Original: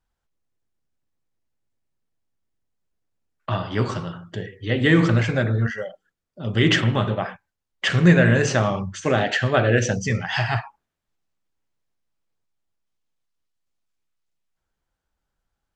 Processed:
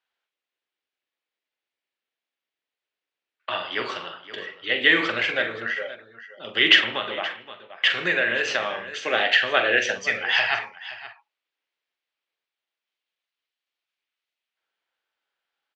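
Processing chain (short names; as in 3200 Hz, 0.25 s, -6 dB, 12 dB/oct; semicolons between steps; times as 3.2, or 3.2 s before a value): three-band isolator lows -22 dB, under 350 Hz, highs -17 dB, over 3800 Hz; tapped delay 43/523 ms -9.5/-15.5 dB; 6.9–9.13 compressor 1.5:1, threshold -27 dBFS, peak gain reduction 4.5 dB; weighting filter D; gain -2 dB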